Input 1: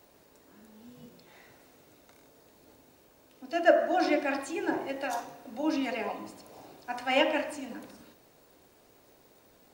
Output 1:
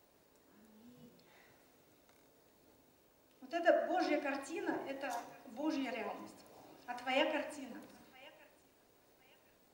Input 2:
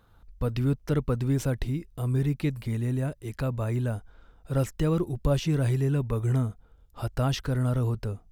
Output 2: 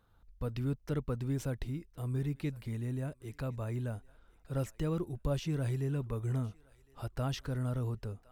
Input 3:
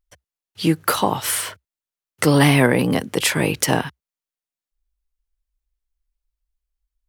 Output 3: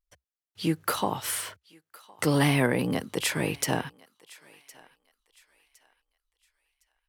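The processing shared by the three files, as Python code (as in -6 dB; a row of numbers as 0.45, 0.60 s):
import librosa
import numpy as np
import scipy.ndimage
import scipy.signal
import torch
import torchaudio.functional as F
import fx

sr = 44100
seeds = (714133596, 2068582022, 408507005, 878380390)

y = fx.echo_thinned(x, sr, ms=1061, feedback_pct=33, hz=890.0, wet_db=-21.0)
y = y * librosa.db_to_amplitude(-8.5)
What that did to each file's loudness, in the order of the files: -8.5, -8.5, -8.5 LU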